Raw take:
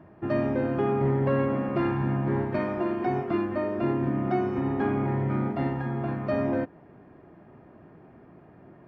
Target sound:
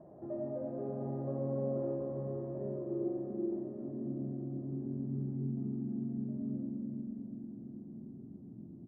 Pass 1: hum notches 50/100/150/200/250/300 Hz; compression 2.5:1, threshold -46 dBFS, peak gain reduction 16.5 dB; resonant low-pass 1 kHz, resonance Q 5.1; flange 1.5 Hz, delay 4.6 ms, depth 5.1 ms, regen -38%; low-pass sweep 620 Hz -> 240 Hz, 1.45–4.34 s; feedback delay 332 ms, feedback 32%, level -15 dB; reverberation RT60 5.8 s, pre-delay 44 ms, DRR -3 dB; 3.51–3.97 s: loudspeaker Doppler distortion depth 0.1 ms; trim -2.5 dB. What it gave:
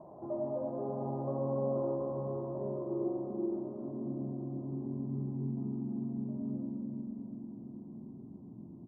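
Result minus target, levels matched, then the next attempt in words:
1 kHz band +7.0 dB
hum notches 50/100/150/200/250/300 Hz; compression 2.5:1, threshold -46 dBFS, peak gain reduction 16.5 dB; flange 1.5 Hz, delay 4.6 ms, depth 5.1 ms, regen -38%; low-pass sweep 620 Hz -> 240 Hz, 1.45–4.34 s; feedback delay 332 ms, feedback 32%, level -15 dB; reverberation RT60 5.8 s, pre-delay 44 ms, DRR -3 dB; 3.51–3.97 s: loudspeaker Doppler distortion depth 0.1 ms; trim -2.5 dB

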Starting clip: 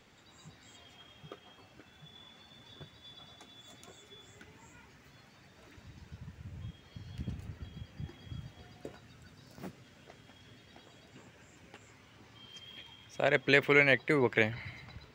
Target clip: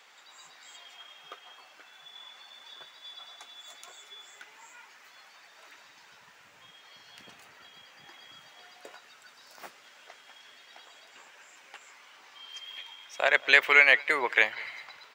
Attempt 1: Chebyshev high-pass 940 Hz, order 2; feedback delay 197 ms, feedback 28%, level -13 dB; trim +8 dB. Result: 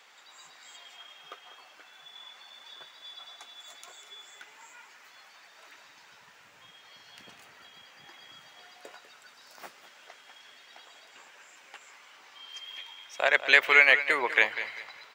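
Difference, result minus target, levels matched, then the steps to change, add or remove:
echo-to-direct +10.5 dB
change: feedback delay 197 ms, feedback 28%, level -23.5 dB

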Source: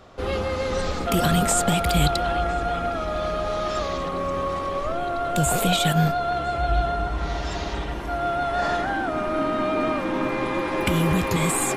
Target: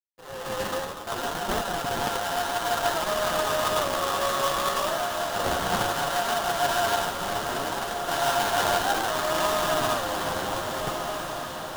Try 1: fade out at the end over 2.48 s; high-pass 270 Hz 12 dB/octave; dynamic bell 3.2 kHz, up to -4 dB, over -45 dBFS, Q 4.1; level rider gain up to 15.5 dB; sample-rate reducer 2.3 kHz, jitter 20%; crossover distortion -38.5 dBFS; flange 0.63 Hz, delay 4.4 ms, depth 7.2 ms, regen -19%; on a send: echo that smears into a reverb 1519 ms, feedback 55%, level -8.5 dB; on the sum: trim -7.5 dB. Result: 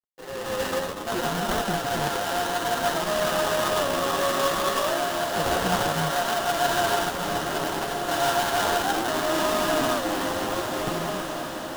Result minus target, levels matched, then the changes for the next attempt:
250 Hz band +4.5 dB
change: high-pass 620 Hz 12 dB/octave

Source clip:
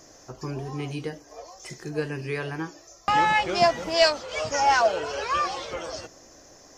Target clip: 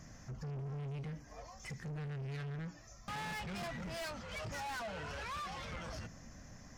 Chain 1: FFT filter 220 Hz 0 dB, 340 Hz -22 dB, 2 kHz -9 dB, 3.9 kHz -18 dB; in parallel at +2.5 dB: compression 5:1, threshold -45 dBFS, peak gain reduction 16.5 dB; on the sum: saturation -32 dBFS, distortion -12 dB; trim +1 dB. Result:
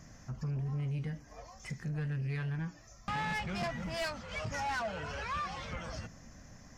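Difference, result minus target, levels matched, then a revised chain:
saturation: distortion -6 dB
FFT filter 220 Hz 0 dB, 340 Hz -22 dB, 2 kHz -9 dB, 3.9 kHz -18 dB; in parallel at +2.5 dB: compression 5:1, threshold -45 dBFS, peak gain reduction 16.5 dB; on the sum: saturation -41 dBFS, distortion -6 dB; trim +1 dB

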